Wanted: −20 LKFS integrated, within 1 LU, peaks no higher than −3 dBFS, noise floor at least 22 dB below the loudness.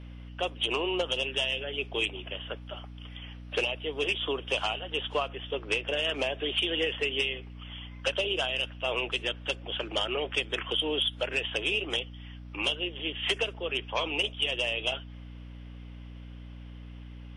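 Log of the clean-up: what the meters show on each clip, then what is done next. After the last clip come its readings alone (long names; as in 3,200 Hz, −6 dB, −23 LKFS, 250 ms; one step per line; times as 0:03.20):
mains hum 60 Hz; hum harmonics up to 300 Hz; level of the hum −41 dBFS; integrated loudness −30.0 LKFS; sample peak −16.0 dBFS; target loudness −20.0 LKFS
→ mains-hum notches 60/120/180/240/300 Hz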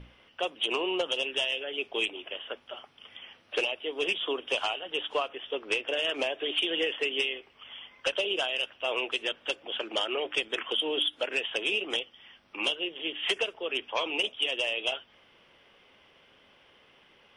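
mains hum none found; integrated loudness −30.0 LKFS; sample peak −16.5 dBFS; target loudness −20.0 LKFS
→ level +10 dB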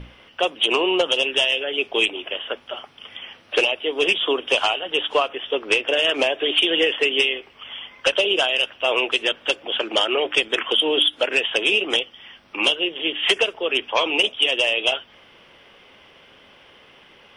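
integrated loudness −20.0 LKFS; sample peak −6.5 dBFS; background noise floor −51 dBFS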